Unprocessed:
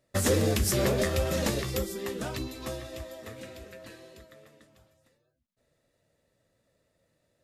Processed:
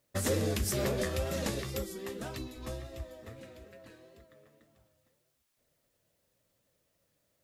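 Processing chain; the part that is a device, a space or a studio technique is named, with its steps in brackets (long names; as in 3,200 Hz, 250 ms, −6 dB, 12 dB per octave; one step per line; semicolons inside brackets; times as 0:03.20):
plain cassette with noise reduction switched in (one half of a high-frequency compander decoder only; tape wow and flutter; white noise bed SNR 41 dB)
0:02.56–0:03.40: low-shelf EQ 81 Hz +12 dB
level −5.5 dB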